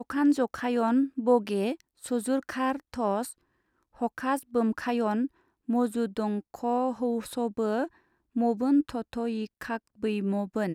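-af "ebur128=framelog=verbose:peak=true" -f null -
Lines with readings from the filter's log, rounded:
Integrated loudness:
  I:         -28.9 LUFS
  Threshold: -39.1 LUFS
Loudness range:
  LRA:         2.3 LU
  Threshold: -49.6 LUFS
  LRA low:   -30.6 LUFS
  LRA high:  -28.3 LUFS
True peak:
  Peak:      -11.6 dBFS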